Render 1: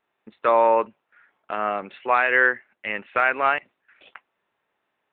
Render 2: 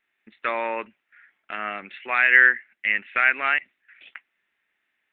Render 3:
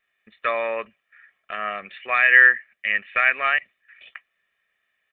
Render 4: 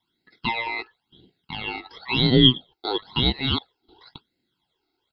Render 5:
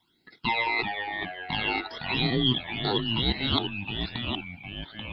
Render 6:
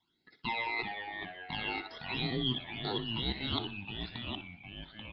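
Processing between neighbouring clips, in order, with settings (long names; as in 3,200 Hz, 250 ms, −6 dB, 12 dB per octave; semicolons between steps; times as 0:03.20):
octave-band graphic EQ 125/500/1,000/2,000 Hz −9/−9/−10/+11 dB; level −1 dB
comb filter 1.7 ms, depth 64%
ring modulation 1,500 Hz; all-pass phaser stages 12, 0.97 Hz, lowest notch 170–1,100 Hz; level +3.5 dB
reversed playback; downward compressor 4 to 1, threshold −30 dBFS, peak gain reduction 17.5 dB; reversed playback; delay with pitch and tempo change per echo 327 ms, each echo −2 semitones, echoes 3, each echo −6 dB; level +6 dB
repeating echo 61 ms, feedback 41%, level −14.5 dB; downsampling to 16,000 Hz; level −8.5 dB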